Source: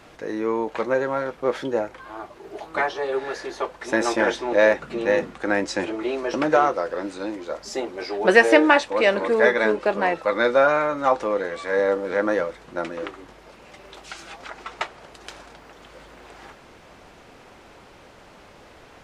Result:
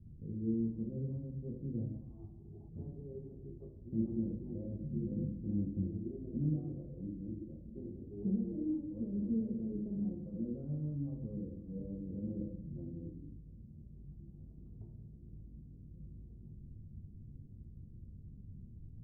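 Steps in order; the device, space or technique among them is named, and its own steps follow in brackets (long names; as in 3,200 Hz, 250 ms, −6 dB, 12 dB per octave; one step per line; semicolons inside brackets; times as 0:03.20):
club heard from the street (brickwall limiter −12 dBFS, peak gain reduction 10.5 dB; low-pass filter 170 Hz 24 dB per octave; convolution reverb RT60 0.80 s, pre-delay 3 ms, DRR −1 dB)
0:01.94–0:02.69: flat-topped bell 1,000 Hz +12.5 dB 1.2 octaves
level +3 dB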